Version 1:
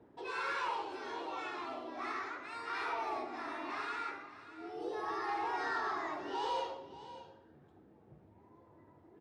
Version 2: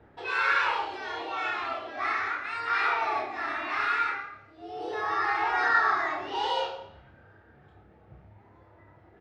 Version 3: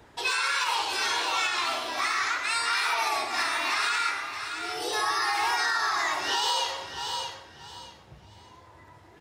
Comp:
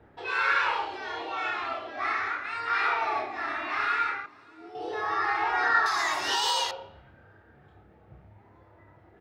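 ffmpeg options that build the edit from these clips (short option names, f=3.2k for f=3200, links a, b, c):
-filter_complex "[1:a]asplit=3[a][b][c];[a]atrim=end=4.262[d];[0:a]atrim=start=4.258:end=4.752[e];[b]atrim=start=4.748:end=5.862[f];[2:a]atrim=start=5.858:end=6.712[g];[c]atrim=start=6.708[h];[d][e]acrossfade=d=0.004:c1=hsin:c2=hsin[i];[i][f]acrossfade=d=0.004:c1=hsin:c2=hsin[j];[j][g]acrossfade=d=0.004:c1=hsin:c2=hsin[k];[k][h]acrossfade=d=0.004:c1=hsin:c2=hsin"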